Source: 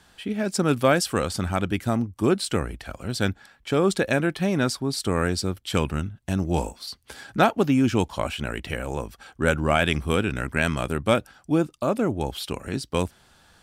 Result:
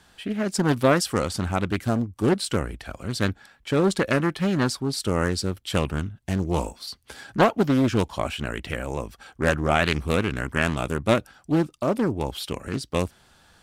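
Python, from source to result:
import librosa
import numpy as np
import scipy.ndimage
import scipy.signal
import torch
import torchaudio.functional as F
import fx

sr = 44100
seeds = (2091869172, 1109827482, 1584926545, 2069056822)

y = fx.doppler_dist(x, sr, depth_ms=0.45)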